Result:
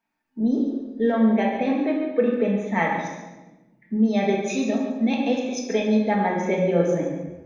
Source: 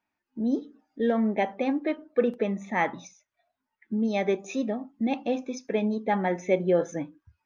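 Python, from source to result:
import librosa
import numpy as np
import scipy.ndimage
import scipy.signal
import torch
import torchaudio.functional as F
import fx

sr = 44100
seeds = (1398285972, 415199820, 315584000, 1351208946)

y = fx.lowpass(x, sr, hz=4000.0, slope=6, at=(1.75, 2.56))
y = fx.high_shelf(y, sr, hz=3000.0, db=9.0, at=(4.47, 5.99))
y = fx.echo_feedback(y, sr, ms=141, feedback_pct=27, wet_db=-10.0)
y = fx.room_shoebox(y, sr, seeds[0], volume_m3=570.0, walls='mixed', distance_m=1.6)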